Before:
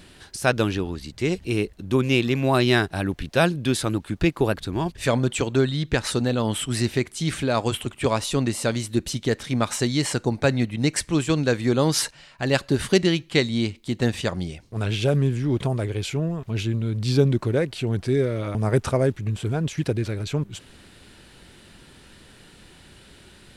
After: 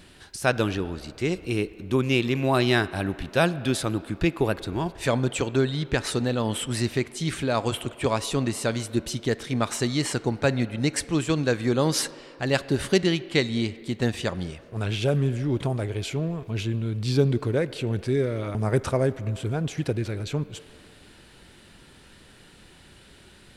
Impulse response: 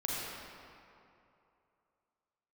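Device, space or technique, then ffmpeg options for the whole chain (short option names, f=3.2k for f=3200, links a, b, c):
filtered reverb send: -filter_complex "[0:a]asplit=2[a][b];[b]highpass=300,lowpass=3.7k[c];[1:a]atrim=start_sample=2205[d];[c][d]afir=irnorm=-1:irlink=0,volume=-19dB[e];[a][e]amix=inputs=2:normalize=0,volume=-2.5dB"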